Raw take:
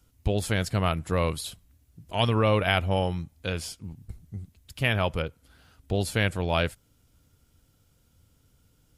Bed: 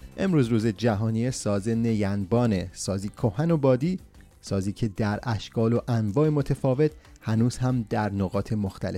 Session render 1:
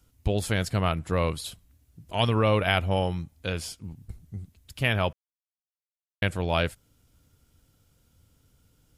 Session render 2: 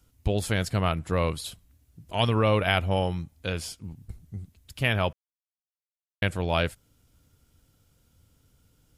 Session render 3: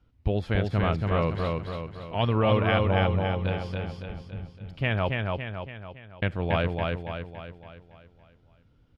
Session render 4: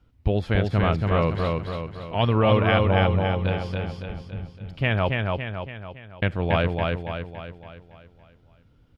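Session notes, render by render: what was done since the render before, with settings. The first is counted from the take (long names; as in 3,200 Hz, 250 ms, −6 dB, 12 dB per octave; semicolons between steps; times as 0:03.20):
0:00.80–0:01.45: high-shelf EQ 7,800 Hz −5.5 dB; 0:05.13–0:06.22: silence
no processing that can be heard
high-frequency loss of the air 310 metres; repeating echo 281 ms, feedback 50%, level −3 dB
level +3.5 dB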